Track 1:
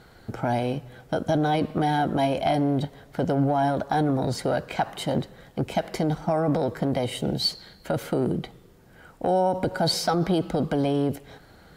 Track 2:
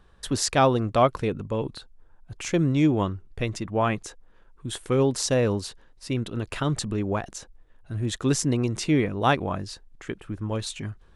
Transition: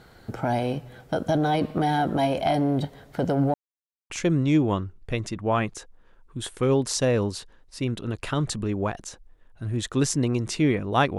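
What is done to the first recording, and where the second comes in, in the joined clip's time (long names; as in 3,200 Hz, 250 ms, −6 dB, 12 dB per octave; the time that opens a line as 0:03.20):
track 1
0:03.54–0:04.10: silence
0:04.10: continue with track 2 from 0:02.39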